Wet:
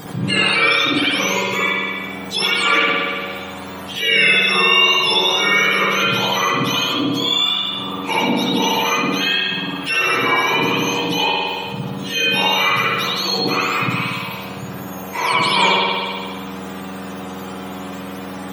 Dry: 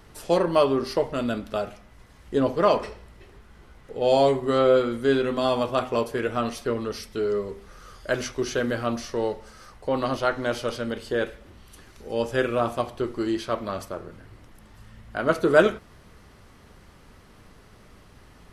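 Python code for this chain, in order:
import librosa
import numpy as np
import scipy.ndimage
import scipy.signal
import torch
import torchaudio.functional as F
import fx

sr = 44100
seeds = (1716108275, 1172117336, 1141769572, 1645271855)

y = fx.octave_mirror(x, sr, pivot_hz=1200.0)
y = fx.rev_spring(y, sr, rt60_s=1.1, pass_ms=(57,), chirp_ms=45, drr_db=-9.0)
y = fx.env_flatten(y, sr, amount_pct=50)
y = y * 10.0 ** (-1.5 / 20.0)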